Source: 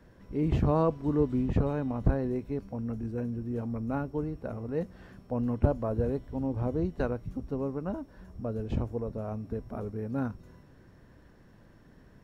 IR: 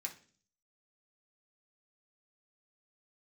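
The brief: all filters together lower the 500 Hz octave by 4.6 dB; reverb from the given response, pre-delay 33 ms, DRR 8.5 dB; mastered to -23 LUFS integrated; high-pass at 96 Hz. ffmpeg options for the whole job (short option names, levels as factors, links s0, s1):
-filter_complex "[0:a]highpass=96,equalizer=f=500:t=o:g=-5.5,asplit=2[s0][s1];[1:a]atrim=start_sample=2205,adelay=33[s2];[s1][s2]afir=irnorm=-1:irlink=0,volume=0.447[s3];[s0][s3]amix=inputs=2:normalize=0,volume=3.55"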